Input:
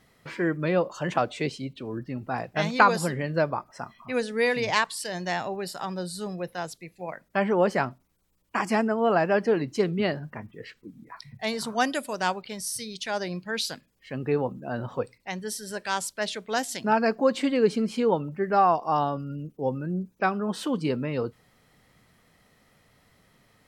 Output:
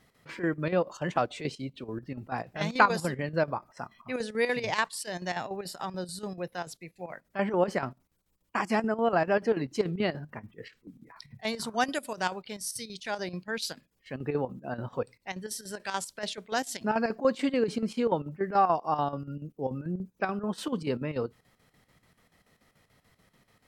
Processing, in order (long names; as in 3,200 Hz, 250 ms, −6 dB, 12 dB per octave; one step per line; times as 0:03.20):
square-wave tremolo 6.9 Hz, depth 65%, duty 70%
level −2.5 dB